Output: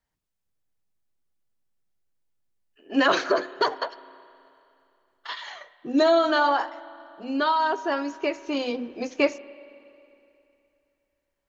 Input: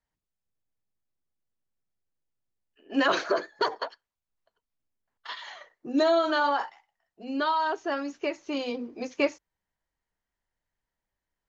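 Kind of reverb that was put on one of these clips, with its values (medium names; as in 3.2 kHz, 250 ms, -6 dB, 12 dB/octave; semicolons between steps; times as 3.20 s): spring tank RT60 2.8 s, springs 30/52 ms, chirp 30 ms, DRR 17 dB; trim +3.5 dB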